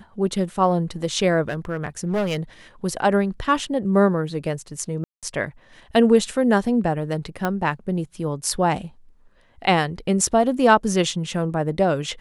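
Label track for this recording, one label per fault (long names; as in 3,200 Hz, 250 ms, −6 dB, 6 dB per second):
1.490000	2.380000	clipping −19 dBFS
5.040000	5.230000	drop-out 187 ms
7.450000	7.450000	click −10 dBFS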